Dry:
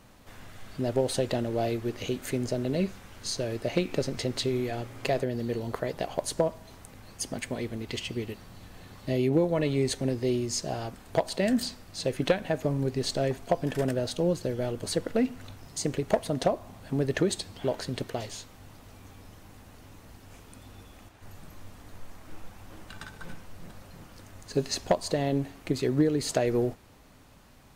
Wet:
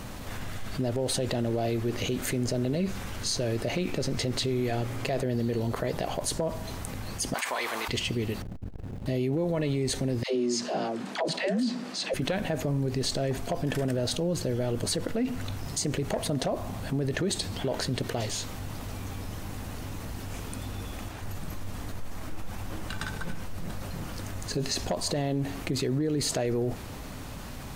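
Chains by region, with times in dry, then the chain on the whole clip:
7.34–7.88 s: resonant high-pass 1 kHz, resonance Q 2.4 + level flattener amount 50%
8.42–9.06 s: median filter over 41 samples + transformer saturation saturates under 140 Hz
10.23–12.14 s: steep high-pass 180 Hz + distance through air 68 m + phase dispersion lows, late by 126 ms, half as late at 440 Hz
whole clip: tone controls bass +3 dB, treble +1 dB; peak limiter -21.5 dBFS; level flattener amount 50%

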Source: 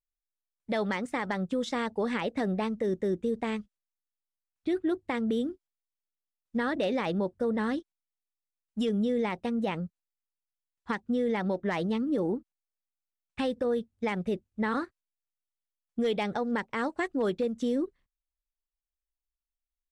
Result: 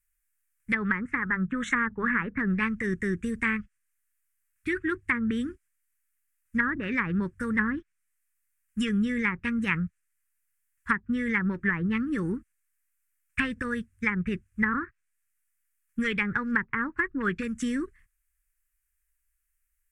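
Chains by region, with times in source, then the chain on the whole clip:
1.22–2.38 s: Butterworth band-stop 4.9 kHz, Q 2.8 + peaking EQ 1.5 kHz +6 dB 1.1 oct + hum notches 50/100/150/200 Hz
whole clip: FFT filter 110 Hz 0 dB, 210 Hz -7 dB, 400 Hz -11 dB, 690 Hz -28 dB, 1.1 kHz +1 dB, 1.7 kHz +14 dB, 2.5 kHz +9 dB, 3.8 kHz -9 dB, 8.6 kHz +14 dB; low-pass that closes with the level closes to 910 Hz, closed at -23.5 dBFS; bass shelf 250 Hz +9 dB; trim +4.5 dB

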